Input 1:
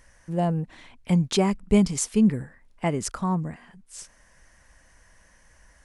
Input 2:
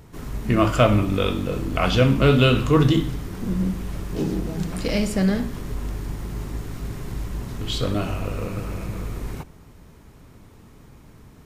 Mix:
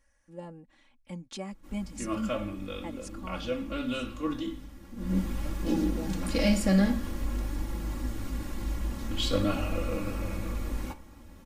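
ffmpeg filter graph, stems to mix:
-filter_complex "[0:a]volume=0.126[s0];[1:a]flanger=delay=5.9:depth=9.6:regen=71:speed=0.48:shape=sinusoidal,adelay=1500,volume=0.891,afade=t=in:st=4.96:d=0.23:silence=0.223872[s1];[s0][s1]amix=inputs=2:normalize=0,aecho=1:1:3.6:0.96"

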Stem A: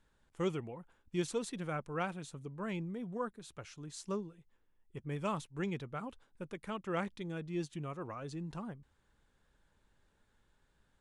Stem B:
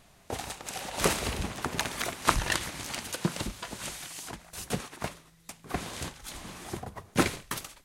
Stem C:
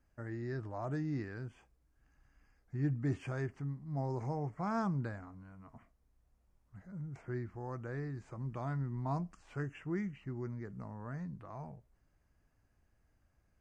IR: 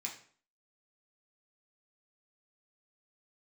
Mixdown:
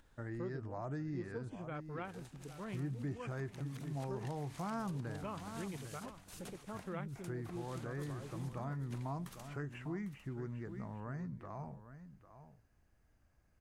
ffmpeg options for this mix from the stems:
-filter_complex "[0:a]afwtdn=0.00631,acompressor=mode=upward:threshold=0.00708:ratio=2.5,volume=0.562,asplit=2[s0][s1];[s1]volume=0.178[s2];[1:a]acompressor=threshold=0.0178:ratio=6,adelay=1750,volume=0.224,afade=t=in:st=3.48:d=0.74:silence=0.446684,asplit=2[s3][s4];[s4]volume=0.237[s5];[2:a]volume=1.12,asplit=2[s6][s7];[s7]volume=0.211[s8];[s2][s5][s8]amix=inputs=3:normalize=0,aecho=0:1:801:1[s9];[s0][s3][s6][s9]amix=inputs=4:normalize=0,acompressor=threshold=0.01:ratio=2.5"

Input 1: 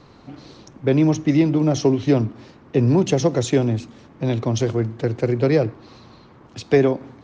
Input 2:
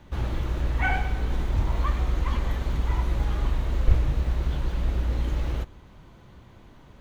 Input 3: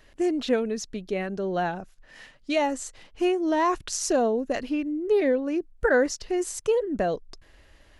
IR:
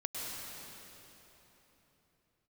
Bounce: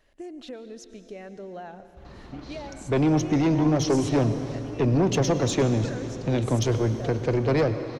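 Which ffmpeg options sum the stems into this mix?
-filter_complex "[0:a]asoftclip=type=tanh:threshold=0.158,adelay=2050,volume=0.75,asplit=2[s0][s1];[s1]volume=0.335[s2];[1:a]highshelf=f=9200:g=-9,acompressor=threshold=0.0316:ratio=6,adelay=1850,volume=0.178[s3];[2:a]equalizer=f=630:w=1.5:g=4,acompressor=threshold=0.0447:ratio=4,volume=0.266,asplit=2[s4][s5];[s5]volume=0.282[s6];[3:a]atrim=start_sample=2205[s7];[s2][s6]amix=inputs=2:normalize=0[s8];[s8][s7]afir=irnorm=-1:irlink=0[s9];[s0][s3][s4][s9]amix=inputs=4:normalize=0"

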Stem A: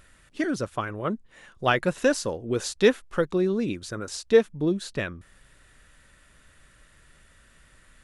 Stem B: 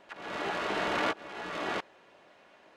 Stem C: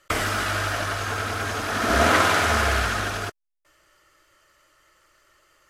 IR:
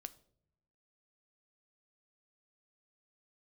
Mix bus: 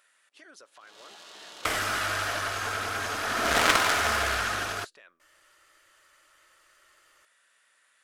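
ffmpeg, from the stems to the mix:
-filter_complex "[0:a]highpass=600,acompressor=threshold=0.00562:ratio=2,alimiter=level_in=2.99:limit=0.0631:level=0:latency=1:release=48,volume=0.335,volume=0.376,asplit=2[s0][s1];[s1]volume=0.631[s2];[1:a]aexciter=amount=5.4:drive=6:freq=3200,adelay=650,volume=0.133[s3];[2:a]aeval=exprs='0.531*(cos(1*acos(clip(val(0)/0.531,-1,1)))-cos(1*PI/2))+0.211*(cos(3*acos(clip(val(0)/0.531,-1,1)))-cos(3*PI/2))+0.237*(cos(4*acos(clip(val(0)/0.531,-1,1)))-cos(4*PI/2))+0.0944*(cos(5*acos(clip(val(0)/0.531,-1,1)))-cos(5*PI/2))+0.133*(cos(6*acos(clip(val(0)/0.531,-1,1)))-cos(6*PI/2))':c=same,adelay=1550,volume=1.19[s4];[3:a]atrim=start_sample=2205[s5];[s2][s5]afir=irnorm=-1:irlink=0[s6];[s0][s3][s4][s6]amix=inputs=4:normalize=0,lowshelf=f=370:g=-9.5"

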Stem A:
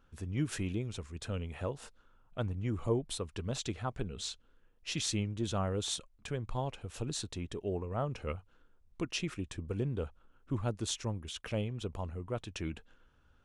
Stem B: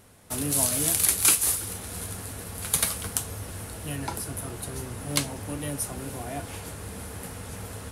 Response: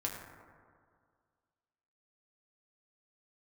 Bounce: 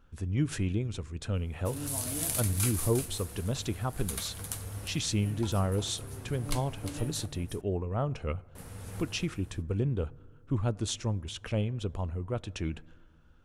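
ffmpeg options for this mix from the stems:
-filter_complex "[0:a]volume=1.12,asplit=3[s0][s1][s2];[s1]volume=0.0944[s3];[1:a]adelay=1350,volume=0.531,asplit=3[s4][s5][s6];[s4]atrim=end=7.26,asetpts=PTS-STARTPTS,afade=t=out:st=7.256:d=0.004:c=hsin[s7];[s5]atrim=start=7.26:end=8.55,asetpts=PTS-STARTPTS,volume=0[s8];[s6]atrim=start=8.55,asetpts=PTS-STARTPTS,afade=t=in:d=0.004:c=hsin[s9];[s7][s8][s9]concat=n=3:v=0:a=1,asplit=3[s10][s11][s12];[s11]volume=0.178[s13];[s12]volume=0.178[s14];[s2]apad=whole_len=408804[s15];[s10][s15]sidechaincompress=threshold=0.0112:ratio=8:attack=6:release=1240[s16];[2:a]atrim=start_sample=2205[s17];[s3][s13]amix=inputs=2:normalize=0[s18];[s18][s17]afir=irnorm=-1:irlink=0[s19];[s14]aecho=0:1:354:1[s20];[s0][s16][s19][s20]amix=inputs=4:normalize=0,lowshelf=f=230:g=5"

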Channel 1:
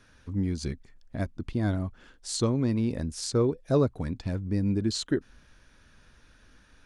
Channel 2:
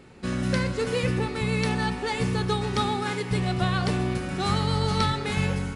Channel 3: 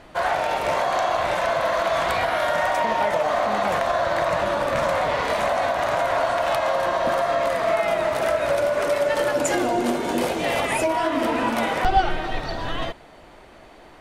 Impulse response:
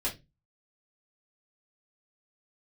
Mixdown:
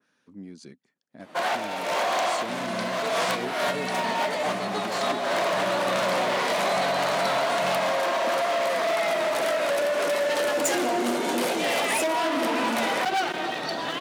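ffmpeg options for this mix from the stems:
-filter_complex "[0:a]asoftclip=type=tanh:threshold=0.133,volume=0.335,asplit=2[s0][s1];[1:a]adelay=2250,volume=0.398[s2];[2:a]asoftclip=type=hard:threshold=0.0794,adelay=1200,volume=1[s3];[s1]apad=whole_len=670551[s4];[s3][s4]sidechaincompress=threshold=0.01:ratio=8:attack=20:release=230[s5];[s0][s2][s5]amix=inputs=3:normalize=0,highpass=f=180:w=0.5412,highpass=f=180:w=1.3066,adynamicequalizer=threshold=0.00891:dfrequency=2300:dqfactor=0.7:tfrequency=2300:tqfactor=0.7:attack=5:release=100:ratio=0.375:range=2:mode=boostabove:tftype=highshelf"

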